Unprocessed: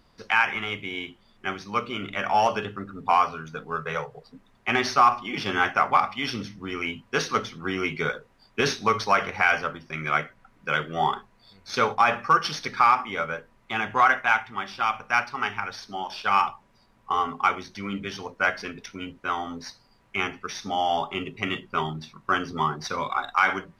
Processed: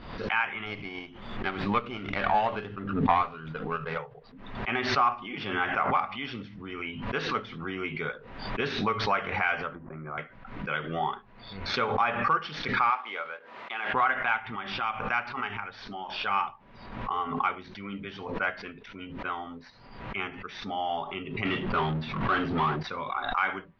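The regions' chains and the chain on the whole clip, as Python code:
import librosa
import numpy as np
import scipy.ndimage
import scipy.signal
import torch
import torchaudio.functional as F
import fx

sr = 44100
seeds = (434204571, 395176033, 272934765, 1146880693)

y = fx.chain(x, sr, fx.transient(attack_db=6, sustain_db=0),
    fx.running_max(window=5), at=(0.66, 3.98))
y = fx.chain(y, sr, fx.lowpass(hz=1200.0, slope=24),
    fx.band_squash(depth_pct=70), at=(9.75, 10.18))
y = fx.chain(y, sr, fx.law_mismatch(coded='A'),
    fx.highpass(hz=500.0, slope=12), at=(12.9, 13.94))
y = fx.chain(y, sr, fx.power_curve(exponent=0.5),
    fx.high_shelf(hz=5700.0, db=-11.5), at=(21.45, 22.83))
y = scipy.signal.sosfilt(scipy.signal.butter(4, 3600.0, 'lowpass', fs=sr, output='sos'), y)
y = fx.pre_swell(y, sr, db_per_s=58.0)
y = y * librosa.db_to_amplitude(-6.5)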